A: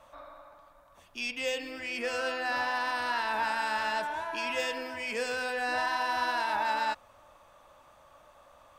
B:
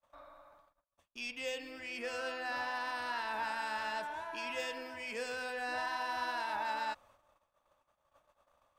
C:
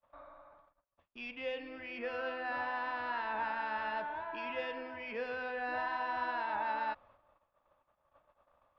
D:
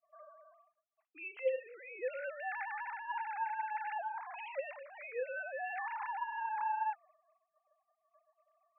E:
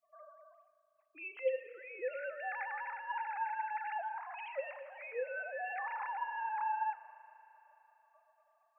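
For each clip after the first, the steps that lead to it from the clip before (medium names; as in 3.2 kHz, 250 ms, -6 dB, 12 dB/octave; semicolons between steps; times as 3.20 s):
gate -55 dBFS, range -33 dB; trim -7 dB
Gaussian low-pass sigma 2.8 samples; trim +2 dB
formants replaced by sine waves; trim -1.5 dB
reverberation RT60 3.8 s, pre-delay 37 ms, DRR 13.5 dB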